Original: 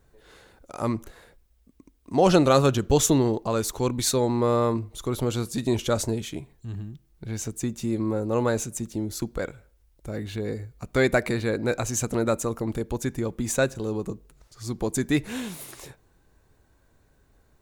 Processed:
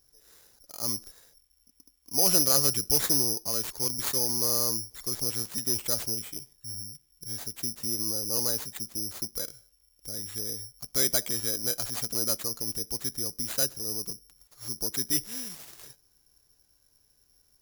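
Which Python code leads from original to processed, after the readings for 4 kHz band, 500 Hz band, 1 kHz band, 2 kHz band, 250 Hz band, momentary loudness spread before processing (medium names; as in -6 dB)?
+4.5 dB, -13.5 dB, -13.0 dB, -11.0 dB, -13.5 dB, 16 LU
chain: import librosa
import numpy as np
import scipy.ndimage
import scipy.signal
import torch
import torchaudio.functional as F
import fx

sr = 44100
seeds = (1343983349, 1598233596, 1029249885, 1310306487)

y = fx.dynamic_eq(x, sr, hz=8200.0, q=0.97, threshold_db=-43.0, ratio=4.0, max_db=-3)
y = (np.kron(y[::8], np.eye(8)[0]) * 8)[:len(y)]
y = y * librosa.db_to_amplitude(-13.5)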